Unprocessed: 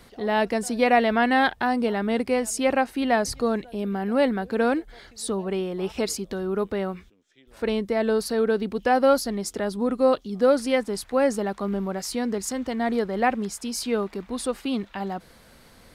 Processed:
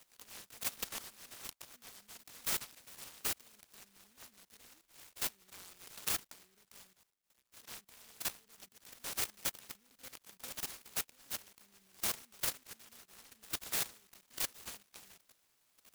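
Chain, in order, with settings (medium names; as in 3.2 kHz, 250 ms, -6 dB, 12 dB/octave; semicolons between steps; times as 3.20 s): level held to a coarse grid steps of 17 dB; elliptic high-pass 2.9 kHz, stop band 40 dB; delay time shaken by noise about 2.1 kHz, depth 0.2 ms; trim +2 dB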